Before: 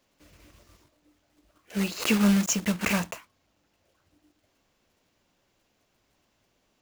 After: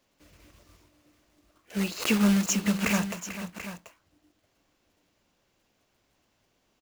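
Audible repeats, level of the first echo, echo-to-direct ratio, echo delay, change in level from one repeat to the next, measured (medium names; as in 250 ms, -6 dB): 2, -12.0 dB, -9.0 dB, 442 ms, no regular repeats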